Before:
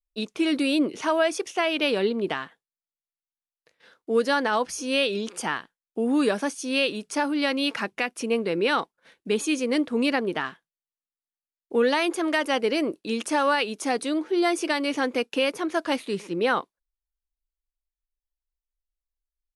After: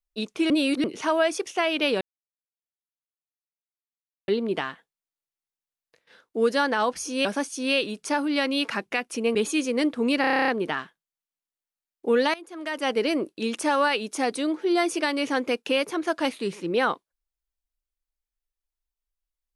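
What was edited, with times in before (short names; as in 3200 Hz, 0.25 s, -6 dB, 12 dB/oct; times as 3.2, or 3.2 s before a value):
0.5–0.84 reverse
2.01 insert silence 2.27 s
4.98–6.31 cut
8.41–9.29 cut
10.15 stutter 0.03 s, 10 plays
12.01–12.59 fade in quadratic, from -19 dB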